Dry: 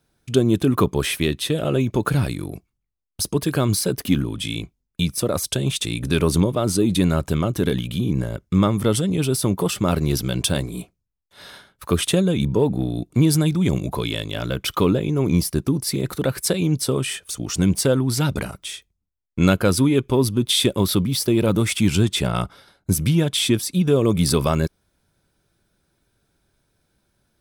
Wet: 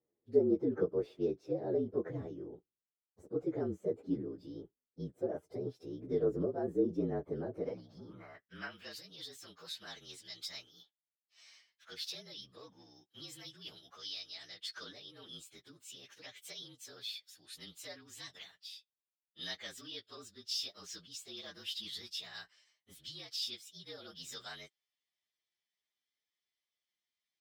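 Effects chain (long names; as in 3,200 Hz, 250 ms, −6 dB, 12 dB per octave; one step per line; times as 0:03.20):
partials spread apart or drawn together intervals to 115%
band-pass filter sweep 420 Hz → 3,600 Hz, 0:07.39–0:08.96
level −5.5 dB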